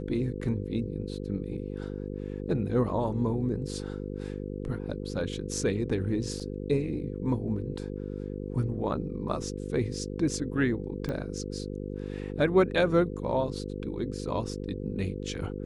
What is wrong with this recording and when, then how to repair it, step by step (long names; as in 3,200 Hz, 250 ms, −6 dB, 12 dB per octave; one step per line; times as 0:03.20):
mains buzz 50 Hz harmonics 10 −36 dBFS
0:06.40–0:06.41: drop-out 5.8 ms
0:11.09: click −22 dBFS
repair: click removal
hum removal 50 Hz, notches 10
repair the gap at 0:06.40, 5.8 ms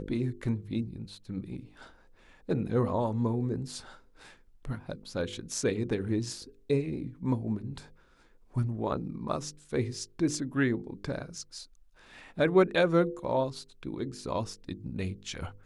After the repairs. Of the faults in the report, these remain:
none of them is left